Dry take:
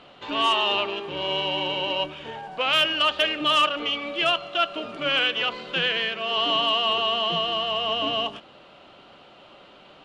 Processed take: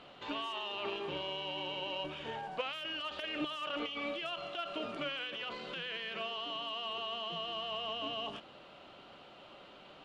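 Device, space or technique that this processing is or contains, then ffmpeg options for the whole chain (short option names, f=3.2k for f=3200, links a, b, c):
de-esser from a sidechain: -filter_complex "[0:a]asplit=2[a][b];[b]highpass=f=5.2k:w=0.5412,highpass=f=5.2k:w=1.3066,apad=whole_len=442803[c];[a][c]sidechaincompress=threshold=-55dB:ratio=8:attack=3.4:release=25,volume=-5dB"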